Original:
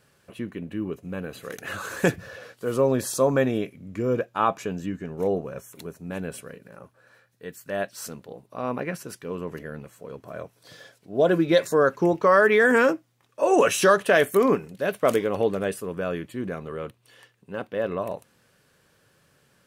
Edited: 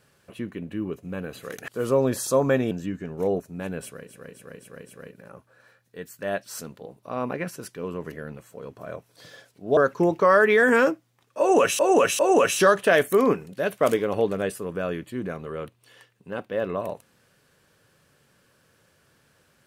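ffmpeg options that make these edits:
-filter_complex "[0:a]asplit=11[a][b][c][d][e][f][g][h][i][j][k];[a]atrim=end=1.682[l];[b]atrim=start=2.548:end=3.582[m];[c]atrim=start=4.708:end=5.402[n];[d]atrim=start=5.908:end=6.8[o];[e]atrim=start=6.3:end=6.8[p];[f]atrim=start=6.3:end=6.8[q];[g]atrim=start=6.3:end=6.8[r];[h]atrim=start=6.3:end=11.242[s];[i]atrim=start=11.788:end=13.812[t];[j]atrim=start=13.408:end=13.812[u];[k]atrim=start=13.408[v];[l][m]acrossfade=d=0.004:c1=hsin:c2=hsin[w];[w][n]acrossfade=d=0.004:c1=hsin:c2=hsin[x];[x][o]acrossfade=d=0.004:c1=hsin:c2=hsin[y];[y][p]acrossfade=d=0.24:c1=tri:c2=tri[z];[z][q]acrossfade=d=0.24:c1=tri:c2=tri[aa];[aa][r]acrossfade=d=0.24:c1=tri:c2=tri[ab];[ab][s]acrossfade=d=0.24:c1=tri:c2=tri[ac];[ac][t]acrossfade=d=0.004:c1=hsin:c2=hsin[ad];[ad][u]acrossfade=d=0.004:c1=hsin:c2=hsin[ae];[ae][v]acrossfade=d=0.004:c1=hsin:c2=hsin"

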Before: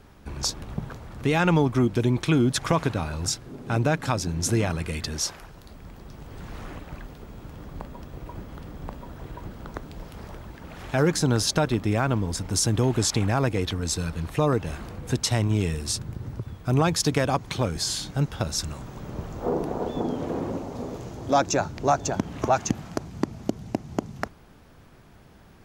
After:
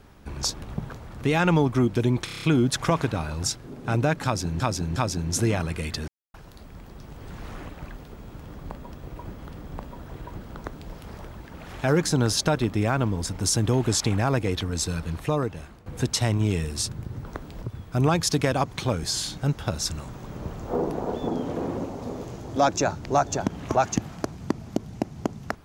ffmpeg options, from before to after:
-filter_complex "[0:a]asplit=14[a][b][c][d][e][f][g][h][i][j][k][l][m][n];[a]atrim=end=2.282[o];[b]atrim=start=2.248:end=2.282[p];[c]atrim=start=2.248:end=2.282[q];[d]atrim=start=2.248:end=2.282[r];[e]atrim=start=2.248:end=2.282[s];[f]atrim=start=2.248:end=2.282[t];[g]atrim=start=2.248:end=4.422[u];[h]atrim=start=4.058:end=4.422[v];[i]atrim=start=4.058:end=5.18,asetpts=PTS-STARTPTS,afade=t=out:st=1.118:d=0.004:c=hsin[w];[j]atrim=start=5.18:end=5.44,asetpts=PTS-STARTPTS,volume=0[x];[k]atrim=start=5.44:end=14.96,asetpts=PTS-STARTPTS,afade=t=in:d=0.004:c=hsin,afade=t=out:st=8.79:d=0.73:silence=0.149624[y];[l]atrim=start=14.96:end=16.352,asetpts=PTS-STARTPTS,afade=t=in:d=0.004:c=hsin:silence=0.149624[z];[m]atrim=start=9.658:end=10.032[aa];[n]atrim=start=16.348[ab];[o][p]acrossfade=d=0.004:c1=hsin:c2=hsin[ac];[ac][q]acrossfade=d=0.004:c1=hsin:c2=hsin[ad];[ad][r]acrossfade=d=0.004:c1=hsin:c2=hsin[ae];[ae][s]acrossfade=d=0.004:c1=hsin:c2=hsin[af];[af][t]acrossfade=d=0.004:c1=hsin:c2=hsin[ag];[ag][u]acrossfade=d=0.004:c1=hsin:c2=hsin[ah];[ah][v]acrossfade=d=0.004:c1=hsin:c2=hsin[ai];[w][x][y][z]concat=n=4:v=0:a=1[aj];[ai][aj]acrossfade=d=0.004:c1=hsin:c2=hsin[ak];[ak][aa]acrossfade=d=0.004:c1=hsin:c2=hsin[al];[al][ab]acrossfade=d=0.004:c1=hsin:c2=hsin"

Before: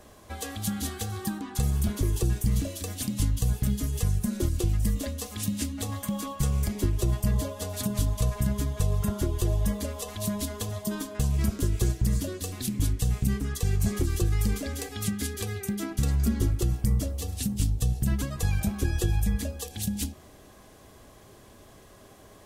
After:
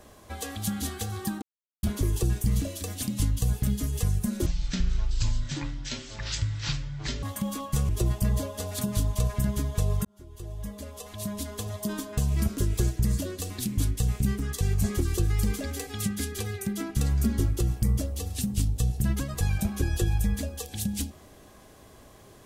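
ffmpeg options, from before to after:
-filter_complex "[0:a]asplit=7[a][b][c][d][e][f][g];[a]atrim=end=1.42,asetpts=PTS-STARTPTS,afade=t=out:st=1.416:d=0.004:c=hsin[h];[b]atrim=start=1.42:end=1.83,asetpts=PTS-STARTPTS,volume=0[i];[c]atrim=start=1.83:end=4.464,asetpts=PTS-STARTPTS,afade=t=in:d=0.004:c=hsin[j];[d]atrim=start=4.46:end=5.9,asetpts=PTS-STARTPTS,asetrate=22932,aresample=44100,atrim=end_sample=122123,asetpts=PTS-STARTPTS[k];[e]atrim=start=5.896:end=6.562[l];[f]atrim=start=6.908:end=9.07,asetpts=PTS-STARTPTS,afade=t=out:st=2.158:d=0.004:c=hsin[m];[g]atrim=start=9.07,asetpts=PTS-STARTPTS,afade=t=in:d=1.9[n];[h][i][j]concat=n=3:v=0:a=1[o];[o][k]acrossfade=d=0.004:c1=hsin:c2=hsin[p];[p][l]acrossfade=d=0.004:c1=hsin:c2=hsin[q];[m][n]concat=n=2:v=0:a=1[r];[q][r]acrossfade=d=0.004:c1=hsin:c2=hsin"

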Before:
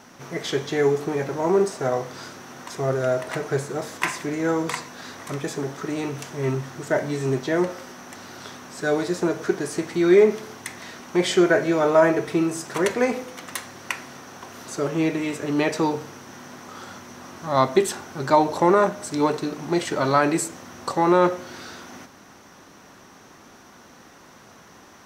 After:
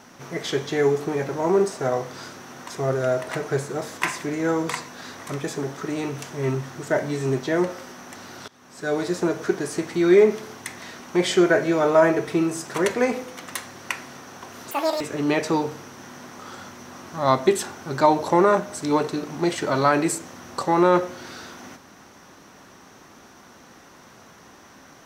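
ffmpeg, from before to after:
-filter_complex "[0:a]asplit=4[a][b][c][d];[a]atrim=end=8.48,asetpts=PTS-STARTPTS,afade=t=out:st=8.476:d=0.004:c=hsin:silence=0.0794328[e];[b]atrim=start=8.48:end=14.714,asetpts=PTS-STARTPTS,afade=t=in:d=0.59:silence=0.0794328[f];[c]atrim=start=14.71:end=15.3,asetpts=PTS-STARTPTS,asetrate=87759,aresample=44100[g];[d]atrim=start=15.296[h];[e][f]concat=n=2:v=0:a=1[i];[i][g]acrossfade=d=0.004:c1=hsin:c2=hsin[j];[j][h]acrossfade=d=0.004:c1=hsin:c2=hsin"

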